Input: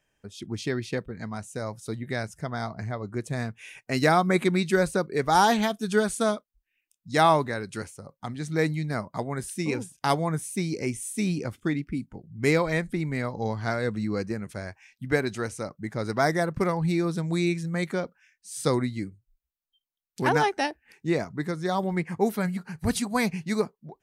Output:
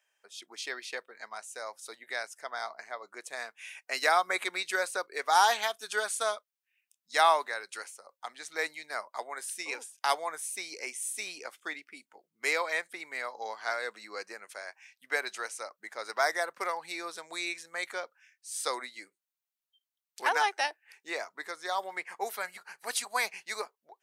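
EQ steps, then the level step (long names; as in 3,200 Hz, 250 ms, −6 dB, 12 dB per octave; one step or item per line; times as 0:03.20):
Bessel high-pass filter 860 Hz, order 4
0.0 dB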